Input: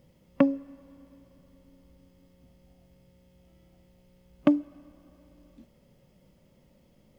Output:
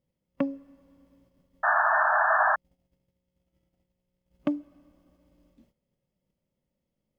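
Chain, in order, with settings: gate -57 dBFS, range -14 dB; painted sound noise, 1.63–2.56 s, 600–1800 Hz -16 dBFS; trim -6.5 dB

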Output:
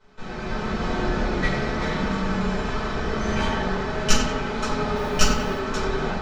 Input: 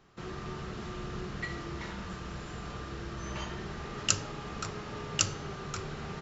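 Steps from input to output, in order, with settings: comb filter that takes the minimum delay 4.6 ms; level rider gain up to 6 dB; low-pass 6.2 kHz 12 dB/octave; tape echo 91 ms, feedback 84%, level -4 dB, low-pass 2.4 kHz; 4.95–5.58 s: modulation noise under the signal 28 dB; band-stop 2.8 kHz, Q 24; simulated room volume 260 m³, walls furnished, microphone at 4.8 m; trim -1 dB

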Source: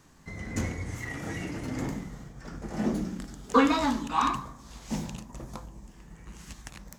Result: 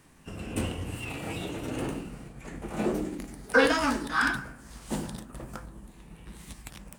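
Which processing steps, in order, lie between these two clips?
formant shift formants +5 st

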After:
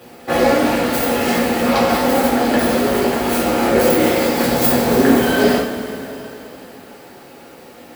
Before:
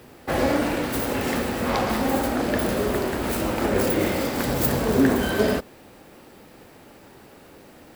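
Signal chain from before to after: high-pass 65 Hz; peaking EQ 83 Hz -6 dB 1.6 oct; two-slope reverb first 0.31 s, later 3.6 s, from -17 dB, DRR -5.5 dB; trim +1.5 dB

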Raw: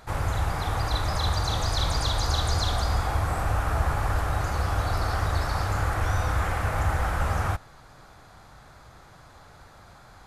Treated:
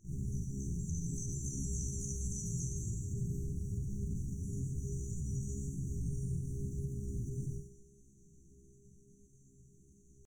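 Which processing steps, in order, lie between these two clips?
resonant high shelf 6.2 kHz -10.5 dB, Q 1.5; chord resonator F2 major, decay 0.68 s; band-passed feedback delay 118 ms, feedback 81%, band-pass 2.1 kHz, level -7 dB; pitch shift +7.5 st; brick-wall FIR band-stop 420–5700 Hz; peaking EQ 69 Hz +11.5 dB 0.82 oct; peak limiter -37 dBFS, peak gain reduction 6 dB; reverberation RT60 0.45 s, pre-delay 33 ms, DRR 3.5 dB; trim +6.5 dB

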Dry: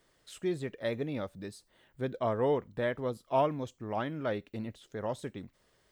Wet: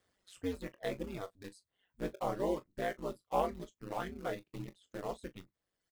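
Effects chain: in parallel at -6.5 dB: bit crusher 6-bit; on the sum: ring modulator 94 Hz; reverb removal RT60 1.1 s; early reflections 23 ms -12.5 dB, 39 ms -17 dB; trim -5 dB

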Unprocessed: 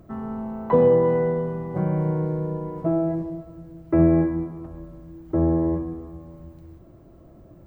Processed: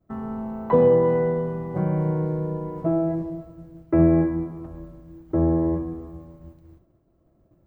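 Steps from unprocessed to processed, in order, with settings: expander -38 dBFS

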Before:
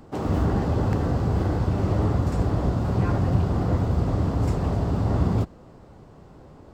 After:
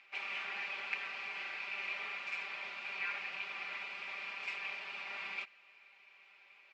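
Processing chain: ladder band-pass 2.5 kHz, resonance 85%; distance through air 97 m; comb 5.1 ms, depth 97%; trim +10 dB

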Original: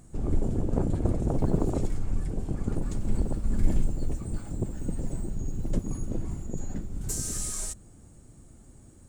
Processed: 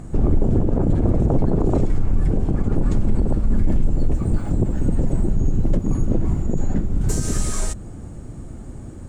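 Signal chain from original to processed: low-pass 1.8 kHz 6 dB/octave; in parallel at +1.5 dB: compression, threshold -37 dBFS, peak gain reduction 21.5 dB; on the sum: loudness maximiser +18.5 dB; trim -8 dB

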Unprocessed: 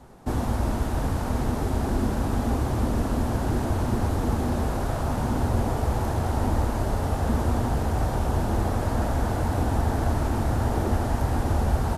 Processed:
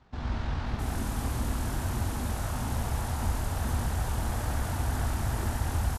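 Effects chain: amplifier tone stack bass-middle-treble 5-5-5; level rider gain up to 5 dB; tempo 2×; bands offset in time lows, highs 660 ms, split 4.6 kHz; trim +5 dB

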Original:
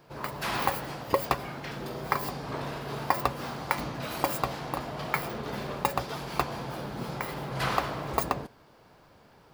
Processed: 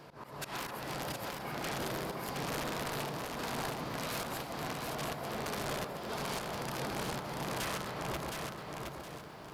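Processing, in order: bass shelf 64 Hz -8 dB; slow attack 445 ms; compression 6:1, threshold -41 dBFS, peak gain reduction 15 dB; echo whose repeats swap between lows and highs 132 ms, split 1.7 kHz, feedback 63%, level -5 dB; on a send at -18 dB: reverberation RT60 0.45 s, pre-delay 5 ms; on the sum: integer overflow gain 35 dB; resampled via 32 kHz; bit-crushed delay 717 ms, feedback 35%, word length 12-bit, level -4 dB; trim +5 dB

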